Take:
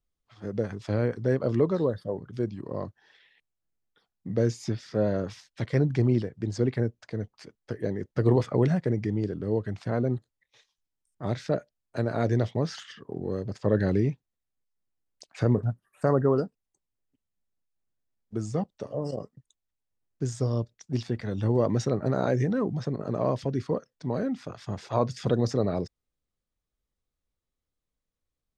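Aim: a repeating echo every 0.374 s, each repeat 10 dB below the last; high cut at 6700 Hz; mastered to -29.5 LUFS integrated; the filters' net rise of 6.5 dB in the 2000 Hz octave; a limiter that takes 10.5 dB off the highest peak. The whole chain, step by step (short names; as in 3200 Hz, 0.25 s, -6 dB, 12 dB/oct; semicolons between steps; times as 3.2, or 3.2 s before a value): LPF 6700 Hz; bell 2000 Hz +8.5 dB; limiter -20 dBFS; feedback echo 0.374 s, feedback 32%, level -10 dB; gain +2.5 dB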